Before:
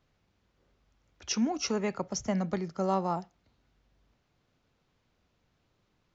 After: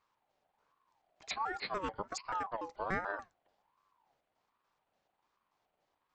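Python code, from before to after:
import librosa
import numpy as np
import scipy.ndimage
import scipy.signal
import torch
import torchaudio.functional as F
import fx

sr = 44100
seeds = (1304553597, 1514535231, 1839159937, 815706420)

y = fx.pitch_trill(x, sr, semitones=-10.0, every_ms=145)
y = fx.ring_lfo(y, sr, carrier_hz=880.0, swing_pct=25, hz=1.3)
y = y * 10.0 ** (-4.0 / 20.0)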